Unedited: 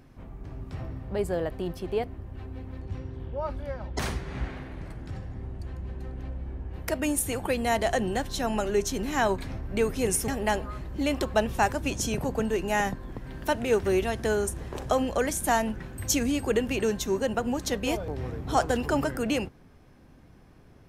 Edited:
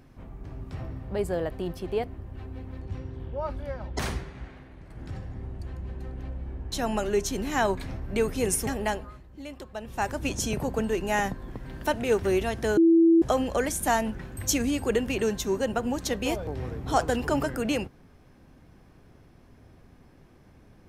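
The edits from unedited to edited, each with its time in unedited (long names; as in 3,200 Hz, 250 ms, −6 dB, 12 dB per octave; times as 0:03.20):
0:04.20–0:05.02: duck −8.5 dB, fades 0.13 s
0:06.72–0:08.33: remove
0:10.37–0:11.88: duck −13.5 dB, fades 0.47 s
0:14.38–0:14.83: beep over 331 Hz −14.5 dBFS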